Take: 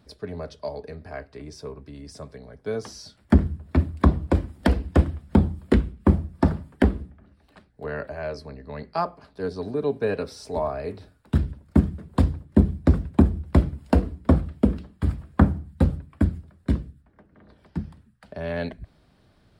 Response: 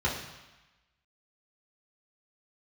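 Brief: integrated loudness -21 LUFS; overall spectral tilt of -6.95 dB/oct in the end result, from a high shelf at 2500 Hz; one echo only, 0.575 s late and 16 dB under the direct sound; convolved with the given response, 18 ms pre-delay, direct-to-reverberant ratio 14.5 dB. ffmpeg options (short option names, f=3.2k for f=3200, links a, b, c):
-filter_complex "[0:a]highshelf=f=2.5k:g=8,aecho=1:1:575:0.158,asplit=2[a][b];[1:a]atrim=start_sample=2205,adelay=18[c];[b][c]afir=irnorm=-1:irlink=0,volume=-24.5dB[d];[a][d]amix=inputs=2:normalize=0,volume=3.5dB"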